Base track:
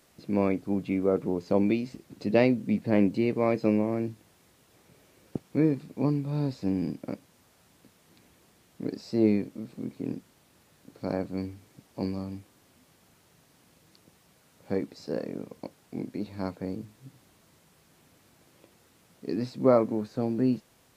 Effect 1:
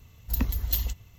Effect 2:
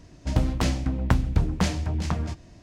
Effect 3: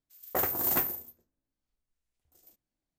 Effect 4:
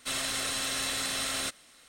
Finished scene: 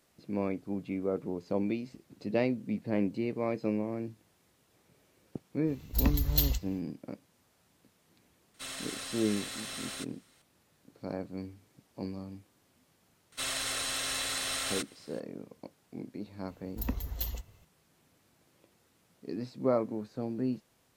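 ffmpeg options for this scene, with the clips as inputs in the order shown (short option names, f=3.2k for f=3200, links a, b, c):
-filter_complex "[1:a]asplit=2[a][b];[4:a]asplit=2[c][d];[0:a]volume=-7dB[e];[a]equalizer=f=4.3k:w=2.7:g=4.5[f];[d]equalizer=f=210:t=o:w=0.77:g=-6.5[g];[b]equalizer=f=550:w=0.52:g=8[h];[f]atrim=end=1.17,asetpts=PTS-STARTPTS,volume=-0.5dB,afade=t=in:d=0.05,afade=t=out:st=1.12:d=0.05,adelay=249165S[i];[c]atrim=end=1.88,asetpts=PTS-STARTPTS,volume=-9dB,afade=t=in:d=0.004:c=hsin,afade=t=out:st=1.876:d=0.004:c=hsin,adelay=8540[j];[g]atrim=end=1.88,asetpts=PTS-STARTPTS,volume=-2dB,afade=t=in:d=0.004:c=hsin,afade=t=out:st=1.876:d=0.004:c=hsin,adelay=587412S[k];[h]atrim=end=1.17,asetpts=PTS-STARTPTS,volume=-9dB,afade=t=in:d=0.004:c=hsin,afade=t=out:st=1.166:d=0.004:c=hsin,adelay=16480[l];[e][i][j][k][l]amix=inputs=5:normalize=0"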